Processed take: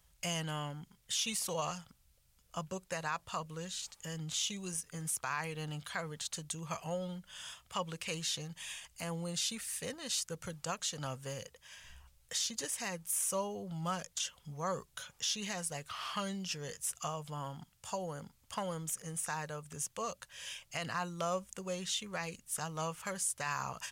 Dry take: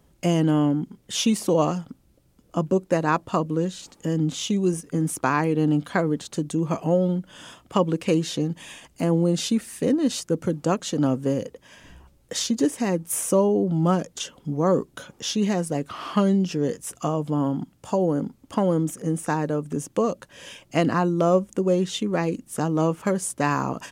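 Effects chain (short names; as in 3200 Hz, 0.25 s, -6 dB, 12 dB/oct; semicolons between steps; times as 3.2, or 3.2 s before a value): passive tone stack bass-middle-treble 10-0-10; limiter -24.5 dBFS, peak gain reduction 9 dB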